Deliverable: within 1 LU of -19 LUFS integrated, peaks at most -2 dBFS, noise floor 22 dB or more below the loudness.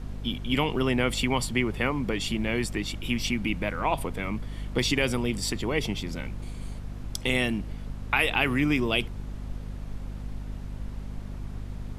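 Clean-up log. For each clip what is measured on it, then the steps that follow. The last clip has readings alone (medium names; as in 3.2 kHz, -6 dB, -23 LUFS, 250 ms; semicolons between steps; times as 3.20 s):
hum 50 Hz; highest harmonic 250 Hz; hum level -34 dBFS; noise floor -39 dBFS; noise floor target -50 dBFS; loudness -27.5 LUFS; peak level -9.5 dBFS; loudness target -19.0 LUFS
-> hum notches 50/100/150/200/250 Hz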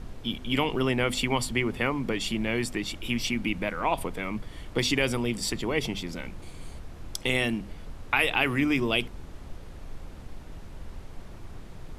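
hum not found; noise floor -43 dBFS; noise floor target -50 dBFS
-> noise print and reduce 7 dB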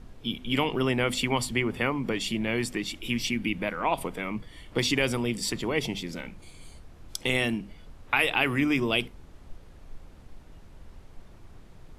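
noise floor -50 dBFS; loudness -28.0 LUFS; peak level -10.0 dBFS; loudness target -19.0 LUFS
-> trim +9 dB; peak limiter -2 dBFS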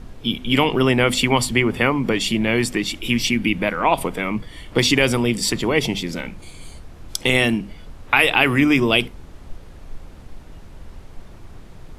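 loudness -19.0 LUFS; peak level -2.0 dBFS; noise floor -41 dBFS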